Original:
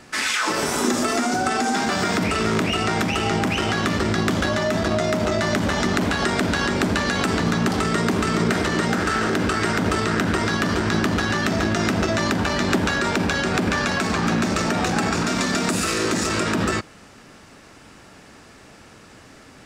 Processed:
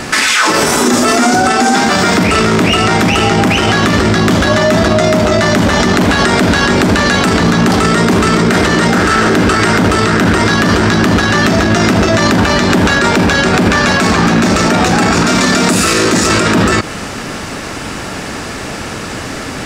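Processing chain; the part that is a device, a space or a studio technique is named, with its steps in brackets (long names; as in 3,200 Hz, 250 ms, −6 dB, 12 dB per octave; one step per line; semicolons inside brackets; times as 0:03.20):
loud club master (downward compressor 2 to 1, threshold −24 dBFS, peak gain reduction 5.5 dB; hard clipping −14 dBFS, distortion −45 dB; boost into a limiter +25 dB)
level −1 dB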